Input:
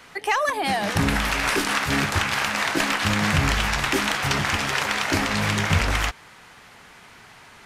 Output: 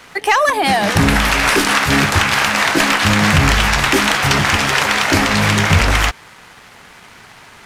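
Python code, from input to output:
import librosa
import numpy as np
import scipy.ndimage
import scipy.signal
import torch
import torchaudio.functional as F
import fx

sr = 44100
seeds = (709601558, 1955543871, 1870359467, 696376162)

y = fx.leveller(x, sr, passes=1)
y = y * librosa.db_to_amplitude(5.5)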